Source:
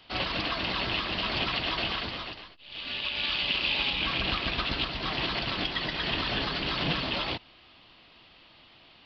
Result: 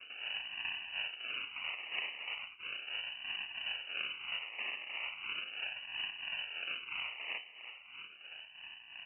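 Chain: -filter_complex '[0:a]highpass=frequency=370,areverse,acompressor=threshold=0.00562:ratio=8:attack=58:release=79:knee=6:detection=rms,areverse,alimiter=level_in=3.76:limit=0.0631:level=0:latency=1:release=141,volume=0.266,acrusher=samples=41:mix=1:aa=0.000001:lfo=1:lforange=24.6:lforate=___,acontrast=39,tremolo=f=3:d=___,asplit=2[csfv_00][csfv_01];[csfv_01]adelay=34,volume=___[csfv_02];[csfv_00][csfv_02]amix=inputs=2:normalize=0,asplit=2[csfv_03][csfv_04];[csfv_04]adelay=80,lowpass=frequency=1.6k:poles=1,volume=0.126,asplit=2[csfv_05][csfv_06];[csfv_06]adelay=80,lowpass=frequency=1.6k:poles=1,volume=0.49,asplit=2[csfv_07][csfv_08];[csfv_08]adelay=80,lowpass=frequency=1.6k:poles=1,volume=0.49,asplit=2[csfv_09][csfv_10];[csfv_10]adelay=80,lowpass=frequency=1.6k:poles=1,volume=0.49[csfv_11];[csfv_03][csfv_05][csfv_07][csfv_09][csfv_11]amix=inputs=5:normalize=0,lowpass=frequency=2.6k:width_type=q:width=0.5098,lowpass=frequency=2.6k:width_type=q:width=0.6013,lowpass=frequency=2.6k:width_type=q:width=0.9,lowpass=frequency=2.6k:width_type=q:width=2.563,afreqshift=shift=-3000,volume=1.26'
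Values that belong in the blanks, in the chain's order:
0.37, 0.63, 0.224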